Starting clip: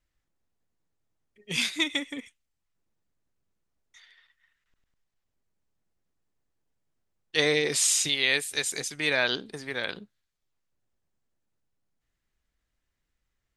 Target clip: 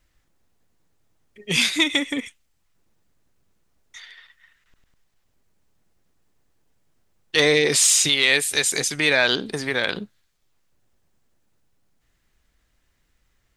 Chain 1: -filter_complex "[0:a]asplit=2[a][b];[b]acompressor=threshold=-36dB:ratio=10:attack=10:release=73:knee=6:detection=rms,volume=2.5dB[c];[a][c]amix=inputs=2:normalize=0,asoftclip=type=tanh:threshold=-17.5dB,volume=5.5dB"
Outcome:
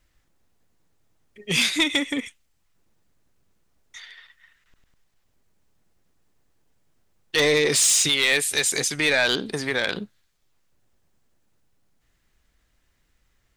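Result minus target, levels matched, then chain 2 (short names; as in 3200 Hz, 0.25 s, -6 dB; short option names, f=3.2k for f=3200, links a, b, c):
soft clip: distortion +10 dB
-filter_complex "[0:a]asplit=2[a][b];[b]acompressor=threshold=-36dB:ratio=10:attack=10:release=73:knee=6:detection=rms,volume=2.5dB[c];[a][c]amix=inputs=2:normalize=0,asoftclip=type=tanh:threshold=-9.5dB,volume=5.5dB"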